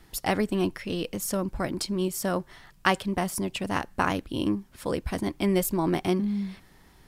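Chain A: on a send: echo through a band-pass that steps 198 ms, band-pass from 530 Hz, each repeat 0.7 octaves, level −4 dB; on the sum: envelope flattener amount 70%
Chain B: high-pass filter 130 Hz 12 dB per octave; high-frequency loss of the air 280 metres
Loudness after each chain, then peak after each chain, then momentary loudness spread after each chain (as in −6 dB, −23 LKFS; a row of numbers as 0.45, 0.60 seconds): −22.0, −30.0 LKFS; −4.0, −8.5 dBFS; 3, 7 LU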